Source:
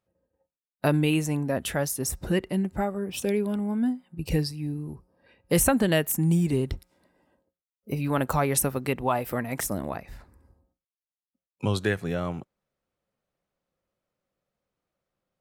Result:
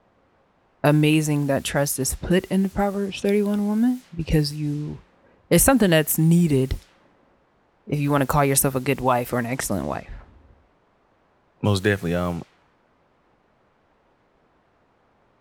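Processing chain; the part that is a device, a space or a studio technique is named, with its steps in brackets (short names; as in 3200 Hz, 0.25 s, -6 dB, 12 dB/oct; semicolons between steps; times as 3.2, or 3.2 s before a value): cassette deck with a dynamic noise filter (white noise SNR 26 dB; low-pass opened by the level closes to 860 Hz, open at -24.5 dBFS); gain +5.5 dB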